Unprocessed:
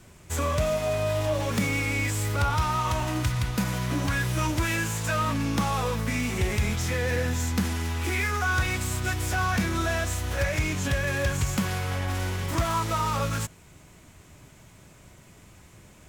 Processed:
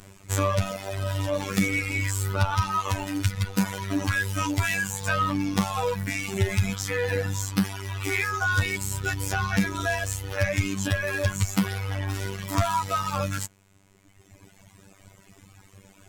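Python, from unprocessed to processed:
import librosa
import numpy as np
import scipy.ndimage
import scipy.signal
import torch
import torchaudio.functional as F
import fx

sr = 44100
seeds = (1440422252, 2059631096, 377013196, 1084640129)

y = fx.robotise(x, sr, hz=97.4)
y = fx.dereverb_blind(y, sr, rt60_s=1.9)
y = F.gain(torch.from_numpy(y), 5.5).numpy()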